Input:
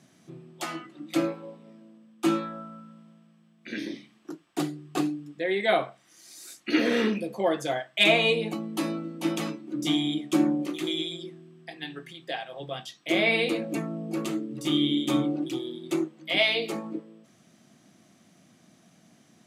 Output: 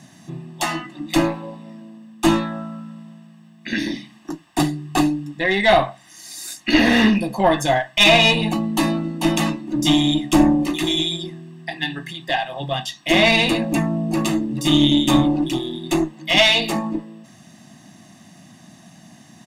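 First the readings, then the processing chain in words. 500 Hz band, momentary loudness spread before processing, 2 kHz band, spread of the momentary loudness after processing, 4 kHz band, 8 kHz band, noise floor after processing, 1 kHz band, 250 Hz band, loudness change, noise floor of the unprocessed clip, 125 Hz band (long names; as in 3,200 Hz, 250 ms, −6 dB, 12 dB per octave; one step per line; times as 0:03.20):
+6.5 dB, 17 LU, +9.0 dB, 19 LU, +10.5 dB, +12.5 dB, −48 dBFS, +12.0 dB, +9.0 dB, +9.0 dB, −61 dBFS, +13.5 dB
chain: one-sided soft clipper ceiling −19 dBFS
comb filter 1.1 ms, depth 69%
boost into a limiter +12 dB
level −1 dB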